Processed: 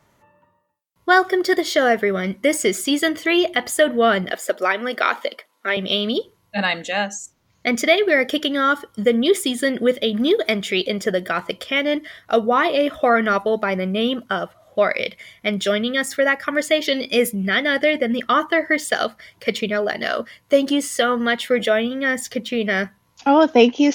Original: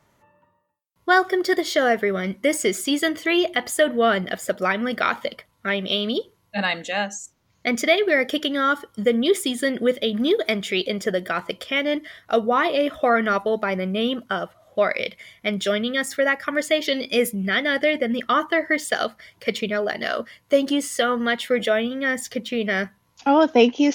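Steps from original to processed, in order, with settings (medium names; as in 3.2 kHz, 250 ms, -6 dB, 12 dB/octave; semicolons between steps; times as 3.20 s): 4.30–5.77 s: high-pass 290 Hz 24 dB/octave; trim +2.5 dB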